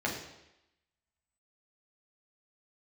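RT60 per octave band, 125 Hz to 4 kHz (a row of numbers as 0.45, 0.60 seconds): 0.80, 0.85, 0.90, 0.90, 0.90, 0.90 seconds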